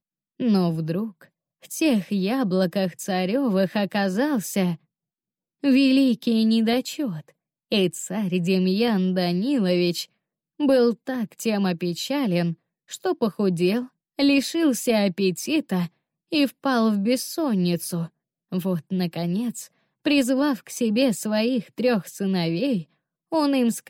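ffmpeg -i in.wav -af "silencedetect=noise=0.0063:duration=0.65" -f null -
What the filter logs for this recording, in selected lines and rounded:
silence_start: 4.76
silence_end: 5.63 | silence_duration: 0.87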